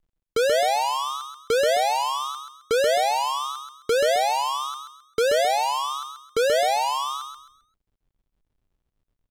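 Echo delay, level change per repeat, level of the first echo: 0.132 s, -10.0 dB, -5.5 dB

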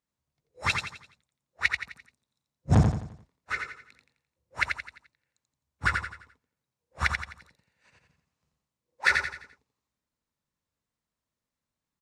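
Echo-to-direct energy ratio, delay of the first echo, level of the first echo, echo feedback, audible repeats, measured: -4.0 dB, 86 ms, -5.0 dB, 40%, 4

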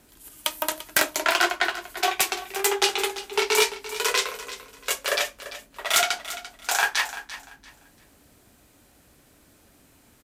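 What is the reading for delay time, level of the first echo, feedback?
0.342 s, -14.0 dB, 26%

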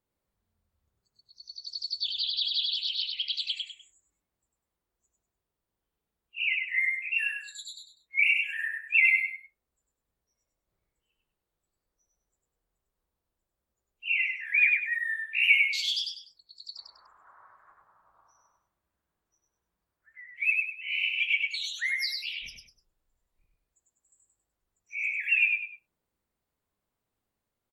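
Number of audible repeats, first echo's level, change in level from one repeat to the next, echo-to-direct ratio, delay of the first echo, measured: 3, -3.0 dB, -9.5 dB, -2.5 dB, 99 ms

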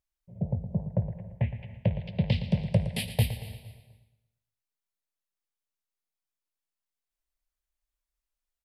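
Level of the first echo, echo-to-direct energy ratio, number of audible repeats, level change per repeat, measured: -12.5 dB, -11.5 dB, 4, -6.5 dB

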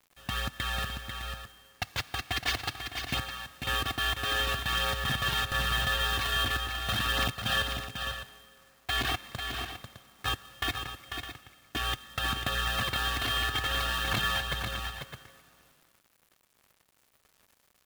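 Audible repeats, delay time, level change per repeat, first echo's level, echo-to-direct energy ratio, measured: 2, 0.494 s, no steady repeat, -6.5 dB, -5.5 dB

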